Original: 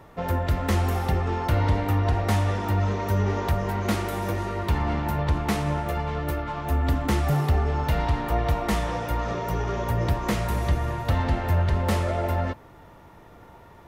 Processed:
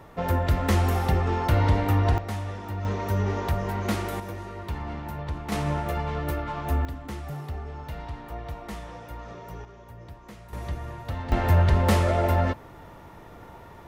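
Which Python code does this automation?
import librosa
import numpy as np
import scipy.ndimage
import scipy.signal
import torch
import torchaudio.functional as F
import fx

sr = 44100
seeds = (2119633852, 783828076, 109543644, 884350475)

y = fx.gain(x, sr, db=fx.steps((0.0, 1.0), (2.18, -9.0), (2.85, -2.0), (4.2, -8.5), (5.52, -1.0), (6.85, -12.5), (9.65, -20.0), (10.53, -9.0), (11.32, 3.0)))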